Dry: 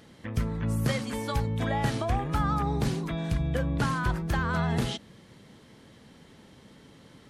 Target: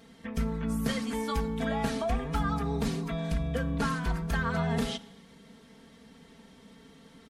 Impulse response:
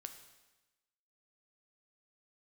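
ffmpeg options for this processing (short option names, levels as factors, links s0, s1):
-filter_complex "[0:a]aecho=1:1:4.4:0.95,asplit=2[s0][s1];[1:a]atrim=start_sample=2205[s2];[s1][s2]afir=irnorm=-1:irlink=0,volume=0.891[s3];[s0][s3]amix=inputs=2:normalize=0,volume=0.422"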